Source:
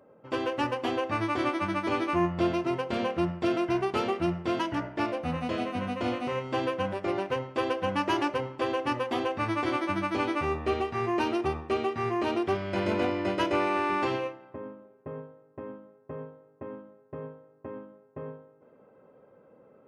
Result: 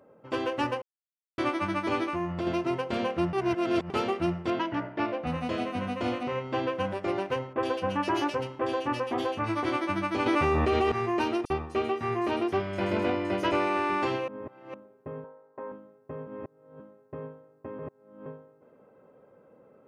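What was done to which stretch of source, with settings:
0.82–1.38 s: mute
2.04–2.47 s: compression, threshold -27 dBFS
3.33–3.90 s: reverse
4.50–5.27 s: band-pass 100–3600 Hz
6.23–6.75 s: distance through air 90 m
7.53–9.65 s: bands offset in time lows, highs 70 ms, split 2.2 kHz
10.26–10.92 s: level flattener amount 100%
11.45–13.52 s: bands offset in time highs, lows 50 ms, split 5.5 kHz
14.28–14.74 s: reverse
15.24–15.72 s: cabinet simulation 280–3700 Hz, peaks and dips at 320 Hz -5 dB, 520 Hz +3 dB, 920 Hz +9 dB, 1.5 kHz +4 dB, 2.9 kHz -8 dB
16.27–16.80 s: reverse
17.79–18.26 s: reverse

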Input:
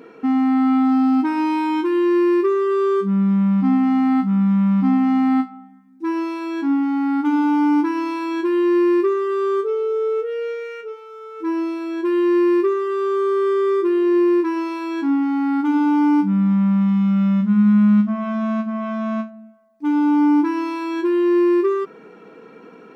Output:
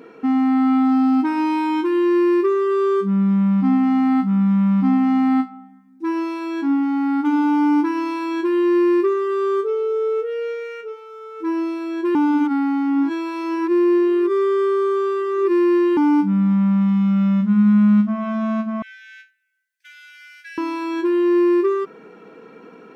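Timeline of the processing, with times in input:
12.15–15.97 s: reverse
18.82–20.58 s: Chebyshev high-pass 1.5 kHz, order 10

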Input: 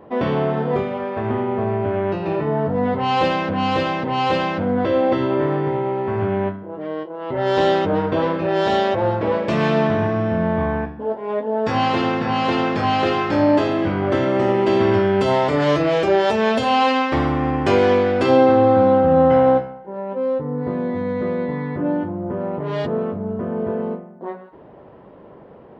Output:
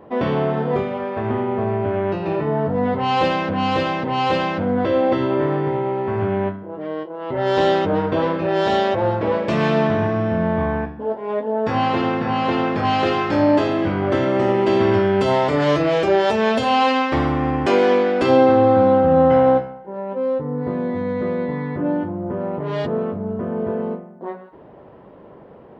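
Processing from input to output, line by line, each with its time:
11.52–12.85 s: treble shelf 4.3 kHz -10 dB
17.66–18.22 s: high-pass 190 Hz 24 dB/octave

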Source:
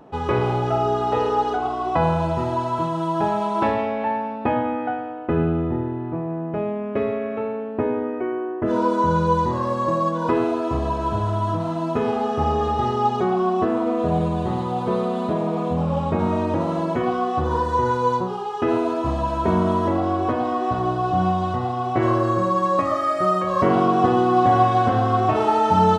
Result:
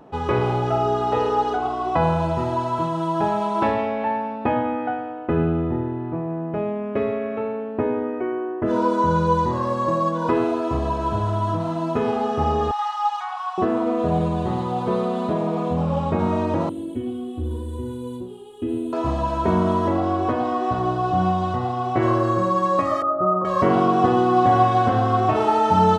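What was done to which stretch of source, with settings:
12.71–13.58 s: steep high-pass 790 Hz 72 dB/octave
16.69–18.93 s: FFT filter 110 Hz 0 dB, 160 Hz -23 dB, 260 Hz +3 dB, 660 Hz -21 dB, 1.2 kHz -28 dB, 2.1 kHz -19 dB, 3.3 kHz -5 dB, 5.5 kHz -26 dB, 8.8 kHz +6 dB
23.02–23.45 s: steep low-pass 1.4 kHz 72 dB/octave

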